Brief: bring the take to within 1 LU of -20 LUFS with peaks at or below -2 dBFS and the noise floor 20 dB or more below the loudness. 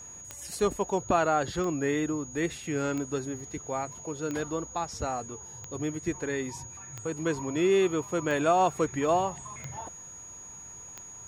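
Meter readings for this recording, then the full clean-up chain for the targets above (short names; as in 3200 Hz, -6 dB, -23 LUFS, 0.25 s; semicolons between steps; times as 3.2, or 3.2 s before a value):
clicks 9; steady tone 6700 Hz; tone level -43 dBFS; loudness -29.5 LUFS; peak -12.0 dBFS; loudness target -20.0 LUFS
-> de-click; notch 6700 Hz, Q 30; gain +9.5 dB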